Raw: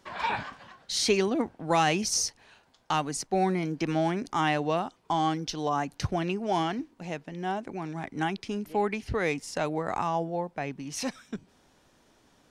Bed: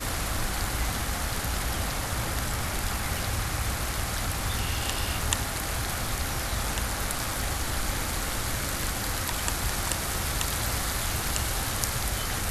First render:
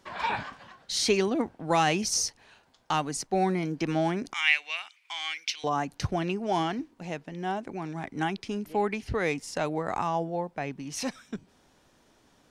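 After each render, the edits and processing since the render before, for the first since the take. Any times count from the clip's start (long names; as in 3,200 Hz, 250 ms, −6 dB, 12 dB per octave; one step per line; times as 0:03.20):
0:04.33–0:05.64: high-pass with resonance 2,300 Hz, resonance Q 8.5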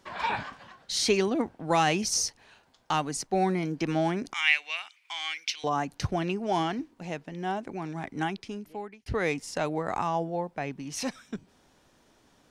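0:08.15–0:09.06: fade out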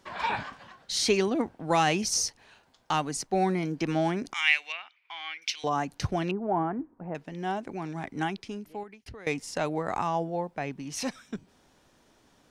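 0:04.72–0:05.42: high-frequency loss of the air 310 metres
0:06.31–0:07.15: low-pass filter 1,400 Hz 24 dB per octave
0:08.83–0:09.27: downward compressor 20 to 1, threshold −40 dBFS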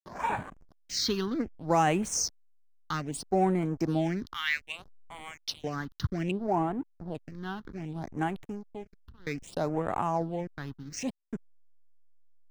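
slack as between gear wheels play −34 dBFS
all-pass phaser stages 6, 0.63 Hz, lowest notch 600–5,000 Hz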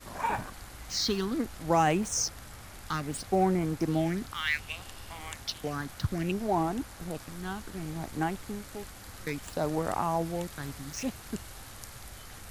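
mix in bed −17 dB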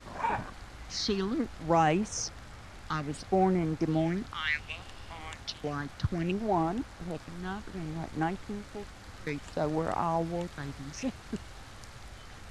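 high-frequency loss of the air 84 metres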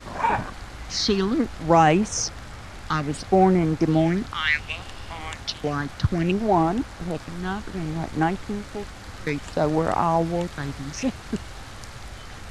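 level +8.5 dB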